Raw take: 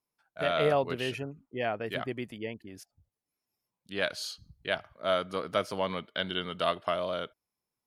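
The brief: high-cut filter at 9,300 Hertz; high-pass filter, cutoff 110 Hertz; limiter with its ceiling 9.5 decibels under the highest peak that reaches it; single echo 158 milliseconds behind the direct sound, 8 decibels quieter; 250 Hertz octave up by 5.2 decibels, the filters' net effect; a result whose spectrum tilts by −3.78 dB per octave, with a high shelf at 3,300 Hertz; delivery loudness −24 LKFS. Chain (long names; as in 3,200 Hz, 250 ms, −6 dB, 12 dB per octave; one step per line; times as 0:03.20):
high-pass filter 110 Hz
low-pass filter 9,300 Hz
parametric band 250 Hz +7 dB
high-shelf EQ 3,300 Hz −3.5 dB
brickwall limiter −21 dBFS
single-tap delay 158 ms −8 dB
level +10 dB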